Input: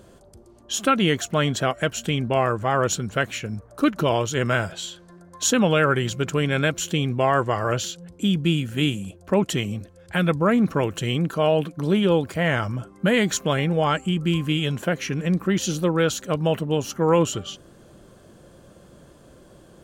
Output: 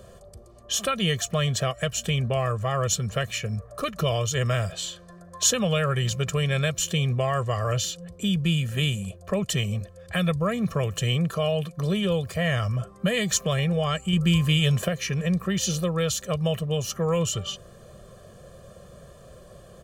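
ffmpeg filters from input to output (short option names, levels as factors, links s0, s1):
-filter_complex "[0:a]asplit=3[s0][s1][s2];[s0]atrim=end=14.132[s3];[s1]atrim=start=14.128:end=14.882,asetpts=PTS-STARTPTS,volume=1.68[s4];[s2]atrim=start=14.878[s5];[s3][s4]acrossfade=d=0.004:c1=hsin:c2=hsin[s6];[s6][s5]acrossfade=d=0.004:c1=hsin:c2=hsin,aecho=1:1:1.7:0.81,acrossover=split=170|3000[s7][s8][s9];[s8]acompressor=threshold=0.0251:ratio=2[s10];[s7][s10][s9]amix=inputs=3:normalize=0"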